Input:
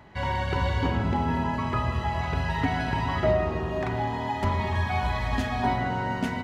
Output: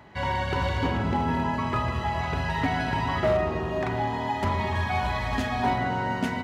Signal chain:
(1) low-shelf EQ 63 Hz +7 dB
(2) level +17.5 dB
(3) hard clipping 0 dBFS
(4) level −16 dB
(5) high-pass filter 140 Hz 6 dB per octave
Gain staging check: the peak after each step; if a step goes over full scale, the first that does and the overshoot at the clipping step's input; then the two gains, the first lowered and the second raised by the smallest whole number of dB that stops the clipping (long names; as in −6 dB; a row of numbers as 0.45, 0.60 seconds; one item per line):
−10.5, +7.0, 0.0, −16.0, −13.5 dBFS
step 2, 7.0 dB
step 2 +10.5 dB, step 4 −9 dB